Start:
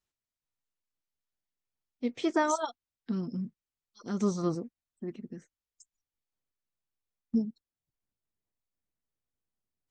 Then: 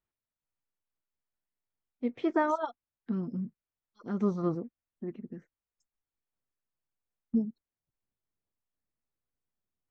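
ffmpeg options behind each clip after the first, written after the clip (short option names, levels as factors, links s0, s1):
-af "lowpass=2000"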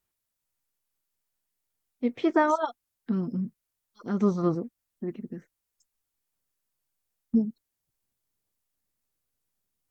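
-af "aemphasis=mode=production:type=cd,volume=1.78"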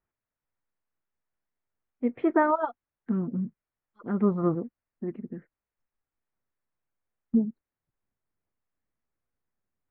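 -af "lowpass=f=2100:w=0.5412,lowpass=f=2100:w=1.3066"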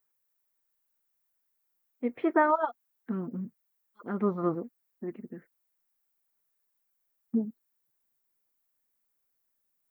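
-af "aemphasis=mode=production:type=bsi"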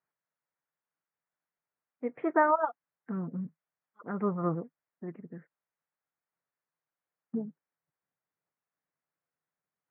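-af "highpass=110,equalizer=f=160:t=q:w=4:g=7,equalizer=f=230:t=q:w=4:g=-7,equalizer=f=360:t=q:w=4:g=-5,lowpass=f=2100:w=0.5412,lowpass=f=2100:w=1.3066"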